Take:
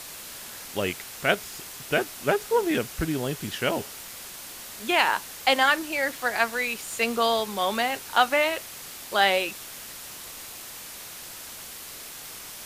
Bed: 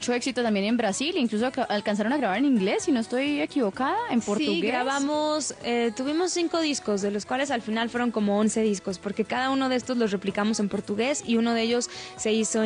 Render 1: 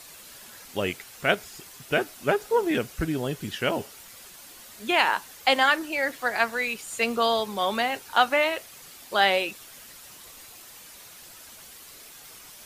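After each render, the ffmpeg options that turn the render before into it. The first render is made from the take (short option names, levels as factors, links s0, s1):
-af "afftdn=nr=8:nf=-41"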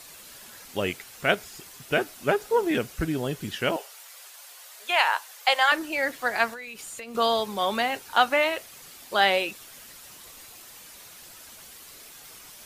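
-filter_complex "[0:a]asettb=1/sr,asplit=3[s0][s1][s2];[s0]atrim=end=3.764[s3];[s1]atrim=start=3.76:end=5.72,asetpts=PTS-STARTPTS,afade=t=in:d=0.004:c=qsin,afade=t=out:st=1.956:d=0.004:c=qsin,highpass=f=550:w=0.5412,highpass=f=550:w=1.3066[s4];[s2]atrim=start=5.716[s5];[s3][s4]acrossfade=d=0.004:c1=hsin:c2=qsin[s6];[s6][s5]acrossfade=d=0.004:c1=qsin:c2=hsin,asettb=1/sr,asplit=3[s7][s8][s9];[s7]atrim=end=6.534[s10];[s8]atrim=start=6.53:end=7.15,asetpts=PTS-STARTPTS,afade=t=in:d=0.004:c=qsin,afade=t=out:st=0.616:d=0.004:c=qsin,acompressor=threshold=0.0178:ratio=12:attack=3.2:release=140:knee=1:detection=peak[s11];[s9]atrim=start=7.146[s12];[s10][s11]acrossfade=d=0.004:c1=hsin:c2=qsin[s13];[s13][s12]acrossfade=d=0.004:c1=qsin:c2=hsin"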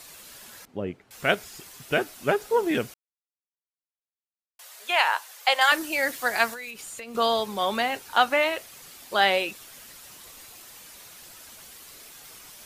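-filter_complex "[0:a]asettb=1/sr,asplit=3[s0][s1][s2];[s0]atrim=end=0.654[s3];[s1]atrim=start=0.65:end=1.11,asetpts=PTS-STARTPTS,afade=t=in:d=0.004:c=qsin,afade=t=out:st=0.456:d=0.004:c=qsin,bandpass=f=190:t=q:w=0.52[s4];[s2]atrim=start=1.106[s5];[s3][s4]acrossfade=d=0.004:c1=hsin:c2=qsin[s6];[s6][s5]acrossfade=d=0.004:c1=qsin:c2=hsin,asettb=1/sr,asplit=3[s7][s8][s9];[s7]atrim=end=5.614[s10];[s8]atrim=start=5.61:end=6.71,asetpts=PTS-STARTPTS,afade=t=in:d=0.004:c=qsin,afade=t=out:st=1.096:d=0.004:c=qsin,highshelf=f=4400:g=9[s11];[s9]atrim=start=6.706[s12];[s10][s11]acrossfade=d=0.004:c1=hsin:c2=qsin[s13];[s13][s12]acrossfade=d=0.004:c1=qsin:c2=hsin,asplit=3[s14][s15][s16];[s14]atrim=end=2.94,asetpts=PTS-STARTPTS,afade=t=out:st=2.936:d=0.004:c=hsin[s17];[s15]atrim=start=2.94:end=4.59,asetpts=PTS-STARTPTS,volume=0[s18];[s16]atrim=start=4.59,asetpts=PTS-STARTPTS,afade=t=in:d=0.004:c=hsin[s19];[s17][s18][s19]concat=n=3:v=0:a=1"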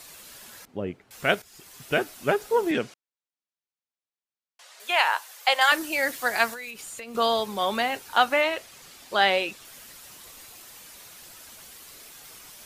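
-filter_complex "[0:a]asettb=1/sr,asplit=3[s0][s1][s2];[s0]atrim=end=2.714[s3];[s1]atrim=start=2.71:end=4.8,asetpts=PTS-STARTPTS,afade=t=in:d=0.004:c=qsin,afade=t=out:st=2.086:d=0.004:c=qsin,highpass=140,lowpass=6500[s4];[s2]atrim=start=4.796[s5];[s3][s4]acrossfade=d=0.004:c1=hsin:c2=qsin[s6];[s6][s5]acrossfade=d=0.004:c1=qsin:c2=hsin,asettb=1/sr,asplit=3[s7][s8][s9];[s7]atrim=end=8.414[s10];[s8]atrim=start=8.41:end=9.65,asetpts=PTS-STARTPTS,afade=t=in:d=0.004:c=qsin,afade=t=out:st=1.236:d=0.004:c=qsin,acrossover=split=8200[s11][s12];[s12]acompressor=threshold=0.00224:ratio=4:attack=1:release=60[s13];[s11][s13]amix=inputs=2:normalize=0[s14];[s9]atrim=start=9.646[s15];[s10][s14]acrossfade=d=0.004:c1=hsin:c2=qsin[s16];[s16][s15]acrossfade=d=0.004:c1=qsin:c2=hsin,asplit=2[s17][s18];[s17]atrim=end=1.42,asetpts=PTS-STARTPTS,afade=t=out:st=1.416:d=0.004:c=hsin:silence=0.223872[s19];[s18]atrim=start=1.42,asetpts=PTS-STARTPTS,afade=t=in:d=0.41:silence=0.223872[s20];[s19][s20]concat=n=2:v=0:a=1"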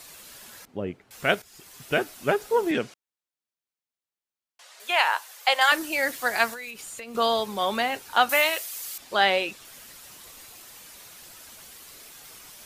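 -filter_complex "[0:a]asettb=1/sr,asplit=3[s0][s1][s2];[s0]atrim=end=8.294[s3];[s1]atrim=start=8.29:end=8.98,asetpts=PTS-STARTPTS,afade=t=in:d=0.004:c=qsin,afade=t=out:st=0.686:d=0.004:c=qsin,aemphasis=mode=production:type=riaa[s4];[s2]atrim=start=8.976[s5];[s3][s4]acrossfade=d=0.004:c1=hsin:c2=qsin[s6];[s6][s5]acrossfade=d=0.004:c1=qsin:c2=hsin"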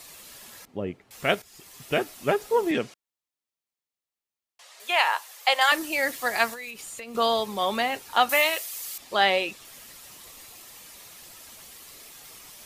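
-af "bandreject=f=1500:w=11"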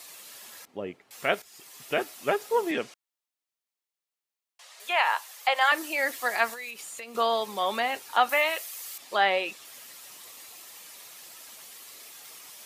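-filter_complex "[0:a]highpass=f=450:p=1,acrossover=split=2600[s0][s1];[s1]acompressor=threshold=0.0178:ratio=4:attack=1:release=60[s2];[s0][s2]amix=inputs=2:normalize=0"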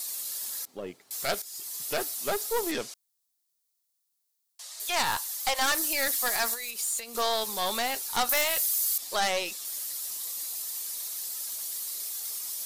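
-af "aeval=exprs='(tanh(12.6*val(0)+0.5)-tanh(0.5))/12.6':c=same,aexciter=amount=4.1:drive=4.9:freq=3800"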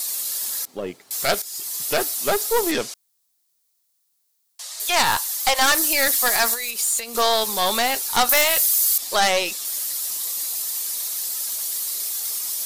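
-af "volume=2.66"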